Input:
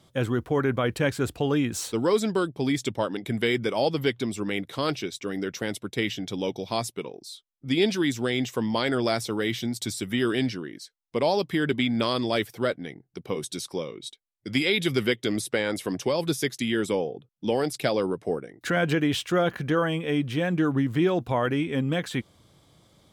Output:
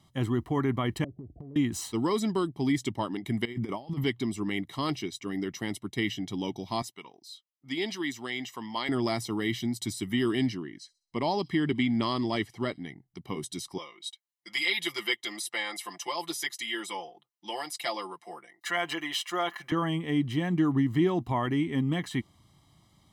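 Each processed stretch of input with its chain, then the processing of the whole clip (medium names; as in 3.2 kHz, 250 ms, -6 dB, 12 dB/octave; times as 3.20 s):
1.04–1.56 s: steep low-pass 690 Hz 96 dB/octave + compression 8:1, threshold -35 dBFS
3.45–4.04 s: peaking EQ 5.5 kHz -7 dB 2.8 oct + compressor with a negative ratio -30 dBFS, ratio -0.5
6.82–8.89 s: high-pass 680 Hz 6 dB/octave + peaking EQ 10 kHz -5.5 dB 0.83 oct
10.55–12.85 s: low-pass 7.7 kHz + band-stop 3.6 kHz, Q 16 + feedback echo behind a high-pass 65 ms, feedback 40%, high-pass 4.9 kHz, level -20 dB
13.78–19.72 s: high-pass 700 Hz + comb 5.8 ms, depth 93%
whole clip: comb 1 ms, depth 72%; dynamic bell 350 Hz, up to +6 dB, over -38 dBFS, Q 1.3; trim -6 dB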